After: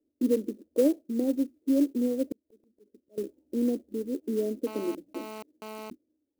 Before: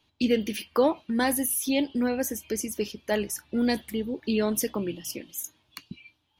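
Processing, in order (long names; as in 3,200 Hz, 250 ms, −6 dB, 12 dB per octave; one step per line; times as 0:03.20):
elliptic low-pass filter 560 Hz, stop band 60 dB
low shelf with overshoot 200 Hz −12.5 dB, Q 3
0:02.32–0:03.18: volume swells 748 ms
0:04.67–0:05.90: phone interference −37 dBFS
converter with an unsteady clock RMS 0.03 ms
level −3.5 dB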